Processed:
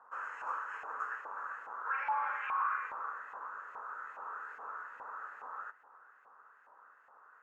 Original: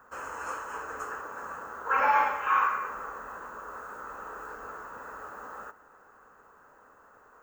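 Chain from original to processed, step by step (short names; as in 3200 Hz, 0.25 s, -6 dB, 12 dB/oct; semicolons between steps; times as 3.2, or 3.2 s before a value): limiter -24 dBFS, peak gain reduction 11.5 dB; LFO band-pass saw up 2.4 Hz 840–2300 Hz; gain +1 dB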